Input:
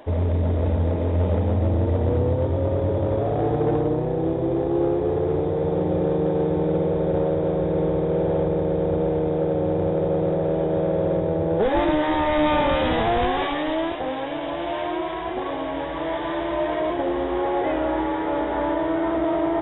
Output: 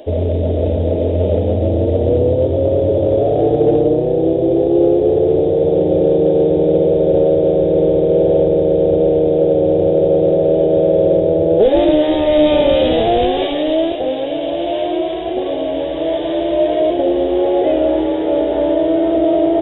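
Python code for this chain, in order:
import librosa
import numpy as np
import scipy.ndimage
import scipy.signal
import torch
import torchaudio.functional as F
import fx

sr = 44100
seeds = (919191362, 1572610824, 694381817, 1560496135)

y = fx.curve_eq(x, sr, hz=(200.0, 370.0, 640.0, 1000.0, 2000.0, 2900.0), db=(0, 7, 8, -12, -6, 5))
y = y * 10.0 ** (3.0 / 20.0)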